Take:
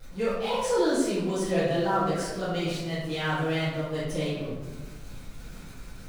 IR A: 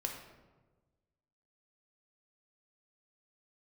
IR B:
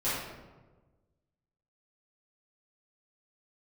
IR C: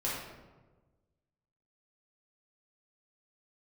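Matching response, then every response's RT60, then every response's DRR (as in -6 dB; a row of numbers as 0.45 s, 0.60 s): B; 1.3 s, 1.3 s, 1.3 s; 1.5 dB, -13.5 dB, -7.5 dB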